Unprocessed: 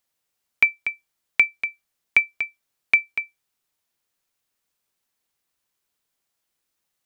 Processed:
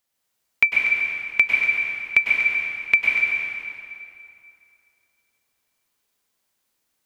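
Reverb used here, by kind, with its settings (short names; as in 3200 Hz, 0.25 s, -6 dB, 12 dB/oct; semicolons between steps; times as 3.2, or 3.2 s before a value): plate-style reverb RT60 2.6 s, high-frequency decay 0.8×, pre-delay 90 ms, DRR -3.5 dB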